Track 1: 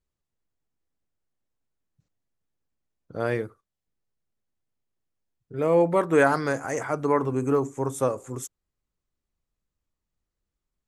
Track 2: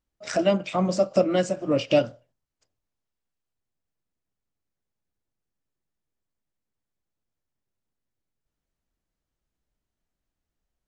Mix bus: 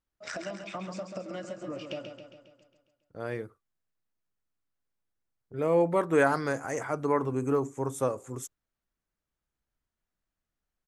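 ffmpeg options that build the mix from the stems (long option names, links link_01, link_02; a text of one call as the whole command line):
ffmpeg -i stem1.wav -i stem2.wav -filter_complex "[0:a]agate=range=-13dB:threshold=-45dB:ratio=16:detection=peak,volume=-4dB[link_01];[1:a]equalizer=frequency=1400:width=1:gain=6,acompressor=threshold=-29dB:ratio=12,volume=-6dB,asplit=3[link_02][link_03][link_04];[link_03]volume=-7dB[link_05];[link_04]apad=whole_len=484023[link_06];[link_01][link_06]sidechaincompress=threshold=-52dB:ratio=8:attack=11:release=1330[link_07];[link_05]aecho=0:1:136|272|408|544|680|816|952|1088:1|0.56|0.314|0.176|0.0983|0.0551|0.0308|0.0173[link_08];[link_07][link_02][link_08]amix=inputs=3:normalize=0" out.wav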